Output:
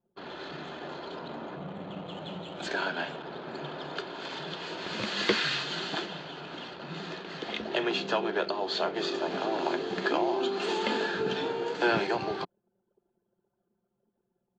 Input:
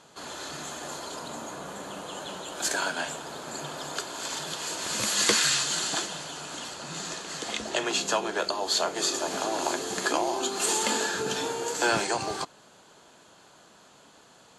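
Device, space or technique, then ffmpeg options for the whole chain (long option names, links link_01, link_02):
guitar cabinet: -filter_complex "[0:a]highpass=78,equalizer=frequency=180:width_type=q:width=4:gain=6,equalizer=frequency=380:width_type=q:width=4:gain=6,equalizer=frequency=1100:width_type=q:width=4:gain=-3,lowpass=frequency=3900:width=0.5412,lowpass=frequency=3900:width=1.3066,asettb=1/sr,asplit=3[link_01][link_02][link_03];[link_01]atrim=end=1.564[link_04];[link_02]atrim=start=1.56:end=2.67,asetpts=PTS-STARTPTS,afade=type=in:duration=0.004:curve=qsin,afade=type=out:start_time=1.106:duration=0.004:curve=qsin,equalizer=frequency=100:width_type=o:width=0.33:gain=11,equalizer=frequency=160:width_type=o:width=0.33:gain=8,equalizer=frequency=400:width_type=o:width=0.33:gain=-5,equalizer=frequency=1000:width_type=o:width=0.33:gain=-3,equalizer=frequency=1600:width_type=o:width=0.33:gain=-7,equalizer=frequency=5000:width_type=o:width=0.33:gain=-4,equalizer=frequency=8000:width_type=o:width=0.33:gain=11[link_05];[link_03]atrim=start=2.666[link_06];[link_04][link_05]acrossfade=duration=0.004:curve1=hsin:curve2=qsin[link_07];[link_07][link_06]acrossfade=duration=0.004:curve1=qsin:curve2=hsin,anlmdn=0.158,volume=-1.5dB"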